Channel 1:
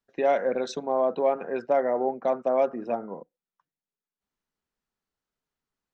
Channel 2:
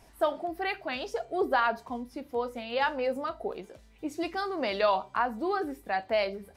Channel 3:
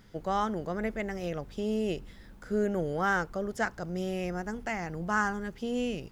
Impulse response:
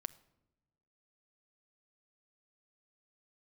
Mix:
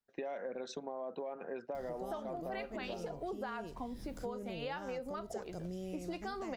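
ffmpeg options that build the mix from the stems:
-filter_complex "[0:a]alimiter=limit=-19dB:level=0:latency=1,volume=-6.5dB[link_01];[1:a]acompressor=threshold=-24dB:ratio=6,adelay=1900,volume=-2dB[link_02];[2:a]acompressor=mode=upward:threshold=-41dB:ratio=2.5,equalizer=frequency=1600:width_type=o:width=1.5:gain=-14,acompressor=threshold=-46dB:ratio=2,adelay=1750,volume=3dB[link_03];[link_01][link_02][link_03]amix=inputs=3:normalize=0,acompressor=threshold=-38dB:ratio=6"

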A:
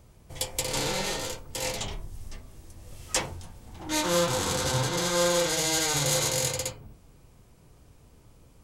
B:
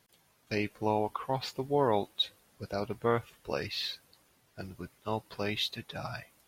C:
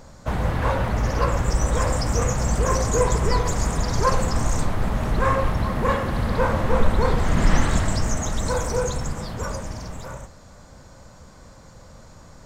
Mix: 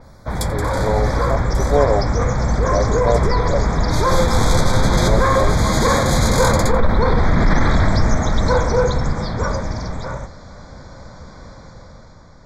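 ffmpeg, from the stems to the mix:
ffmpeg -i stem1.wav -i stem2.wav -i stem3.wav -filter_complex "[0:a]volume=2.5dB,asplit=2[link_01][link_02];[link_02]volume=-20dB[link_03];[1:a]lowpass=frequency=630:width_type=q:width=4.9,aecho=1:1:7.1:0.8,volume=-4dB,asplit=2[link_04][link_05];[2:a]lowpass=frequency=5500:width=0.5412,lowpass=frequency=5500:width=1.3066,alimiter=limit=-14dB:level=0:latency=1:release=10,volume=0.5dB[link_06];[link_05]apad=whole_len=380625[link_07];[link_01][link_07]sidechaincompress=threshold=-34dB:ratio=8:attack=9:release=1090[link_08];[link_03]aecho=0:1:88:1[link_09];[link_08][link_04][link_06][link_09]amix=inputs=4:normalize=0,dynaudnorm=framelen=240:gausssize=7:maxgain=8dB,asuperstop=centerf=2800:order=8:qfactor=3.1,adynamicequalizer=threshold=0.0158:dfrequency=5500:dqfactor=0.7:tfrequency=5500:tqfactor=0.7:attack=5:release=100:ratio=0.375:range=3.5:mode=cutabove:tftype=highshelf" out.wav

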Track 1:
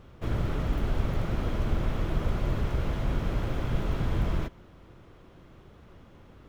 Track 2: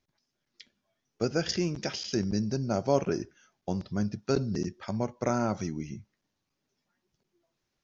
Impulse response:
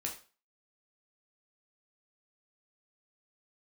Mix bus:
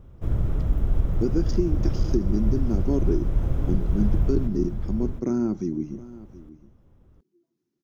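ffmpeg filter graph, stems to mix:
-filter_complex "[0:a]lowshelf=frequency=130:gain=10,bandreject=frequency=4400:width=9.2,volume=-2dB,asplit=2[link_01][link_02];[link_02]volume=-7.5dB[link_03];[1:a]highpass=170,lowshelf=frequency=440:width_type=q:width=3:gain=8.5,volume=-3.5dB,asplit=2[link_04][link_05];[link_05]volume=-18.5dB[link_06];[link_03][link_06]amix=inputs=2:normalize=0,aecho=0:1:718:1[link_07];[link_01][link_04][link_07]amix=inputs=3:normalize=0,equalizer=frequency=2700:width_type=o:width=2.7:gain=-9.5,alimiter=limit=-11dB:level=0:latency=1:release=264"

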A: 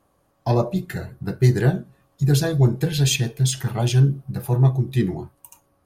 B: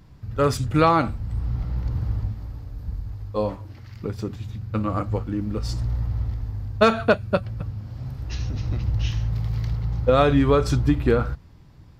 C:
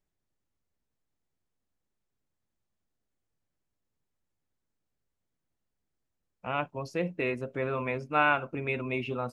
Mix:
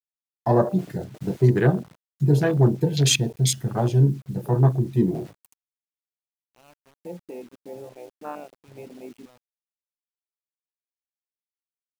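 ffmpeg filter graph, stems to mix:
ffmpeg -i stem1.wav -i stem2.wav -i stem3.wav -filter_complex "[0:a]volume=2.5dB,asplit=2[link_01][link_02];[1:a]aeval=exprs='(mod(9.44*val(0)+1,2)-1)/9.44':channel_layout=same,adelay=400,volume=-12.5dB[link_03];[2:a]equalizer=frequency=1400:width_type=o:width=0.94:gain=-9.5,adelay=100,volume=-4.5dB[link_04];[link_02]apad=whole_len=546826[link_05];[link_03][link_05]sidechaingate=range=-33dB:threshold=-39dB:ratio=16:detection=peak[link_06];[link_01][link_06][link_04]amix=inputs=3:normalize=0,highpass=150,afwtdn=0.0398,acrusher=bits=8:mix=0:aa=0.000001" out.wav

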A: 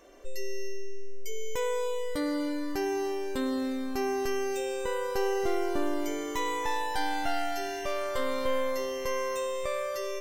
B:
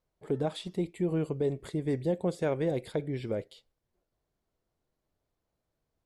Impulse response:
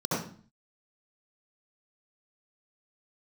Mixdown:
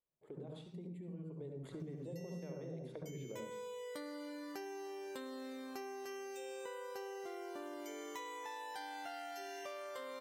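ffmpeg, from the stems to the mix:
-filter_complex "[0:a]highpass=340,adelay=1800,volume=-3.5dB[link_01];[1:a]acompressor=threshold=-30dB:ratio=6,volume=-6.5dB,afade=type=in:start_time=1.3:duration=0.26:silence=0.281838,asplit=2[link_02][link_03];[link_03]volume=-11dB[link_04];[2:a]atrim=start_sample=2205[link_05];[link_04][link_05]afir=irnorm=-1:irlink=0[link_06];[link_01][link_02][link_06]amix=inputs=3:normalize=0,acompressor=threshold=-44dB:ratio=6"

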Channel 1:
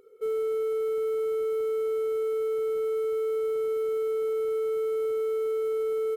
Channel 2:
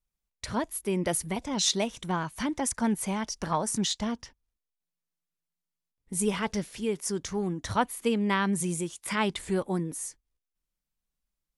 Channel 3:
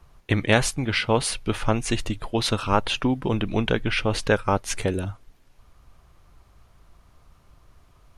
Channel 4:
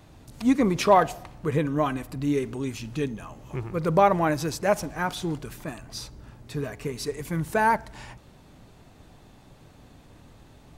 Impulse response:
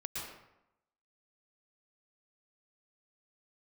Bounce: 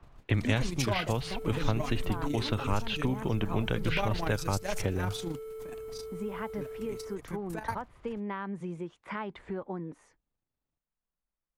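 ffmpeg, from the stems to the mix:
-filter_complex "[0:a]highshelf=frequency=5800:gain=10.5,adelay=1000,volume=-14dB[link_01];[1:a]lowpass=1400,lowshelf=frequency=380:gain=-8,acompressor=threshold=-34dB:ratio=5,volume=1.5dB[link_02];[2:a]lowpass=2800,volume=-2dB,asplit=2[link_03][link_04];[3:a]tremolo=f=26:d=0.571,adynamicequalizer=threshold=0.01:dfrequency=2100:dqfactor=0.7:tfrequency=2100:tqfactor=0.7:attack=5:release=100:ratio=0.375:range=2:mode=boostabove:tftype=highshelf,volume=-5dB[link_05];[link_04]apad=whole_len=479600[link_06];[link_05][link_06]sidechaingate=range=-33dB:threshold=-52dB:ratio=16:detection=peak[link_07];[link_01][link_02][link_03][link_07]amix=inputs=4:normalize=0,acrossover=split=140|3000[link_08][link_09][link_10];[link_09]acompressor=threshold=-30dB:ratio=4[link_11];[link_08][link_11][link_10]amix=inputs=3:normalize=0"

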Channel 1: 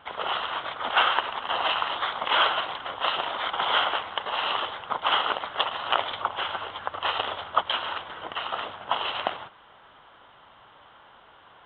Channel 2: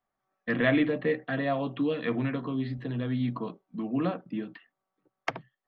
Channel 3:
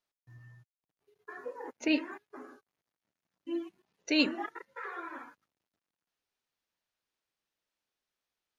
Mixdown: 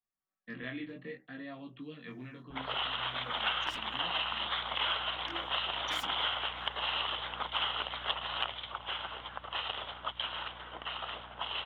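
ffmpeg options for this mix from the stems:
ffmpeg -i stem1.wav -i stem2.wav -i stem3.wav -filter_complex "[0:a]adynamicequalizer=threshold=0.0126:dfrequency=3000:dqfactor=0.95:tfrequency=3000:tqfactor=0.95:attack=5:release=100:ratio=0.375:range=2.5:mode=boostabove:tftype=bell,aeval=exprs='val(0)+0.00501*(sin(2*PI*60*n/s)+sin(2*PI*2*60*n/s)/2+sin(2*PI*3*60*n/s)/3+sin(2*PI*4*60*n/s)/4+sin(2*PI*5*60*n/s)/5)':channel_layout=same,adelay=2500,volume=-1dB,afade=type=out:start_time=8.36:duration=0.25:silence=0.398107[link_01];[1:a]equalizer=frequency=640:width_type=o:width=2:gain=-10,flanger=delay=17.5:depth=6.3:speed=0.63,volume=-7.5dB[link_02];[2:a]asubboost=boost=8.5:cutoff=94,aeval=exprs='0.0335*(abs(mod(val(0)/0.0335+3,4)-2)-1)':channel_layout=same,adelay=1800,volume=-5.5dB[link_03];[link_01][link_02][link_03]amix=inputs=3:normalize=0,acrossover=split=200|2200[link_04][link_05][link_06];[link_04]acompressor=threshold=-53dB:ratio=4[link_07];[link_05]acompressor=threshold=-38dB:ratio=4[link_08];[link_06]acompressor=threshold=-35dB:ratio=4[link_09];[link_07][link_08][link_09]amix=inputs=3:normalize=0" out.wav

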